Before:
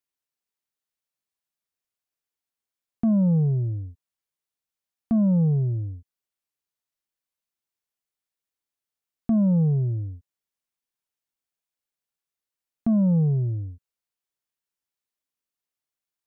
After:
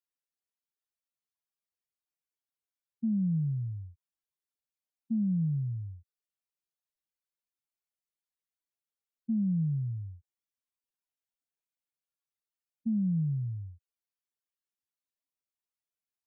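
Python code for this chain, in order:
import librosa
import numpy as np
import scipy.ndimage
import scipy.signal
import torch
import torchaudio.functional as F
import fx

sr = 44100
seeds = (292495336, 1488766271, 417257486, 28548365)

y = fx.spec_expand(x, sr, power=2.4)
y = F.gain(torch.from_numpy(y), -8.5).numpy()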